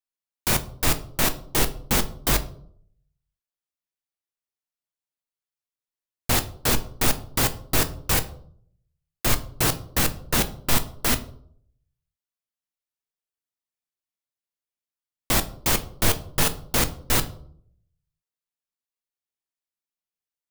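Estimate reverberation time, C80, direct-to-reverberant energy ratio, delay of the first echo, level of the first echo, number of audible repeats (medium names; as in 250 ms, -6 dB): 0.60 s, 20.0 dB, 9.0 dB, no echo, no echo, no echo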